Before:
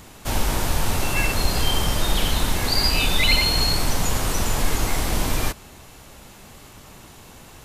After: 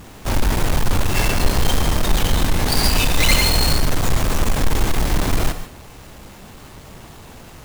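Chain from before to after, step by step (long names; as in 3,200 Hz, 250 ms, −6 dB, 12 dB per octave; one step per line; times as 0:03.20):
each half-wave held at its own peak
reverb whose tail is shaped and stops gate 170 ms rising, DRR 10 dB
level −1 dB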